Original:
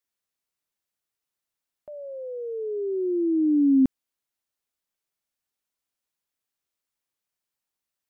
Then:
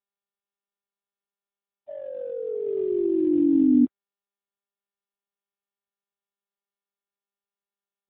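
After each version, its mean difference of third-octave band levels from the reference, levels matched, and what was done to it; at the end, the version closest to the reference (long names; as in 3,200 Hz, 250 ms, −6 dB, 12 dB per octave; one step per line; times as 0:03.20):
5.5 dB: three sine waves on the formant tracks
in parallel at −12 dB: slack as between gear wheels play −34.5 dBFS
on the sum: AMR narrowband 7.4 kbit/s 8,000 Hz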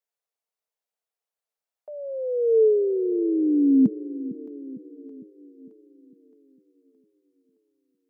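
2.0 dB: hollow resonant body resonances 210/440 Hz, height 14 dB, ringing for 60 ms
high-pass filter sweep 660 Hz → 91 Hz, 0:01.91–0:04.47
on a send: echo with a time of its own for lows and highs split 380 Hz, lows 454 ms, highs 618 ms, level −15 dB
on the sum: level −6.5 dB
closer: second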